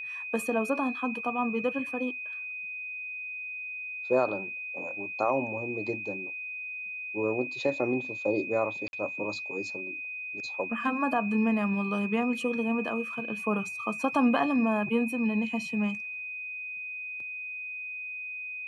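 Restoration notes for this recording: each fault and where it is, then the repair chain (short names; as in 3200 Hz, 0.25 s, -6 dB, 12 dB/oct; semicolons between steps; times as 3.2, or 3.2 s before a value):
tone 2500 Hz -35 dBFS
8.88–8.93 gap 51 ms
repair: notch 2500 Hz, Q 30; interpolate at 8.88, 51 ms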